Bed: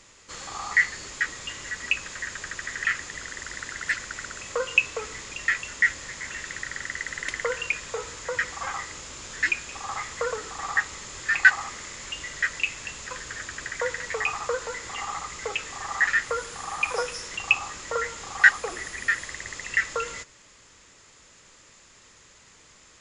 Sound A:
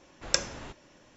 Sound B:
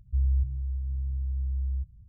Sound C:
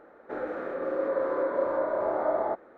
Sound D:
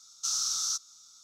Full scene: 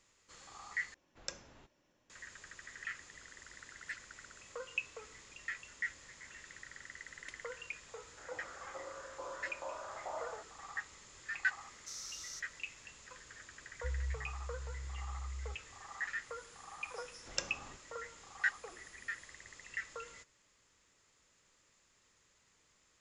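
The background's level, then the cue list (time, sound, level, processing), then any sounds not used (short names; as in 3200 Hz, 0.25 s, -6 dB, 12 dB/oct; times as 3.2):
bed -17.5 dB
0.94 replace with A -17 dB
7.88 add C -8.5 dB + LFO band-pass saw up 2.3 Hz 790–2300 Hz
11.63 add D -16.5 dB
13.71 add B -13.5 dB
17.04 add A -11.5 dB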